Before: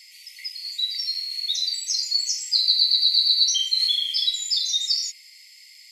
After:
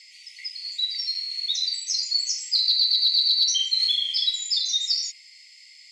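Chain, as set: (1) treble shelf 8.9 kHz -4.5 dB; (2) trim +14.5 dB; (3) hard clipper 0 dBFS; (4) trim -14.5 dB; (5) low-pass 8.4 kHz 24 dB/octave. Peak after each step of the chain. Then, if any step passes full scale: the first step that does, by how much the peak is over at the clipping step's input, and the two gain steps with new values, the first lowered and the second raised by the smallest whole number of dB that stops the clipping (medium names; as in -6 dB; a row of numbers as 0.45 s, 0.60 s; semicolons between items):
-6.5 dBFS, +8.0 dBFS, 0.0 dBFS, -14.5 dBFS, -12.5 dBFS; step 2, 8.0 dB; step 2 +6.5 dB, step 4 -6.5 dB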